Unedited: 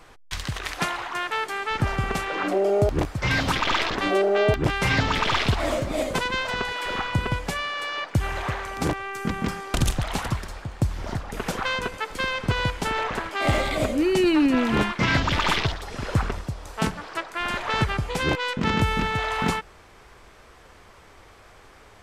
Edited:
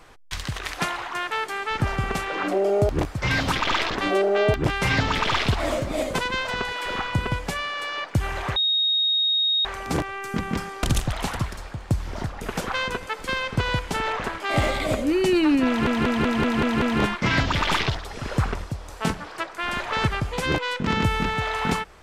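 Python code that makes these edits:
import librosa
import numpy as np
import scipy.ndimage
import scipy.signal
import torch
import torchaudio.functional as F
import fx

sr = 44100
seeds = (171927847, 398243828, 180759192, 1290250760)

y = fx.edit(x, sr, fx.insert_tone(at_s=8.56, length_s=1.09, hz=3740.0, db=-18.5),
    fx.stutter(start_s=14.59, slice_s=0.19, count=7), tone=tone)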